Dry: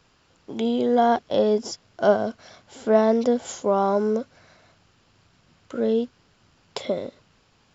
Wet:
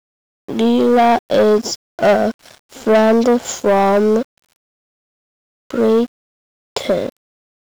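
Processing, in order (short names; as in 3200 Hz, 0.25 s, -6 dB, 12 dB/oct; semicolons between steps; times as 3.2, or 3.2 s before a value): sample leveller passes 3; requantised 8-bit, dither none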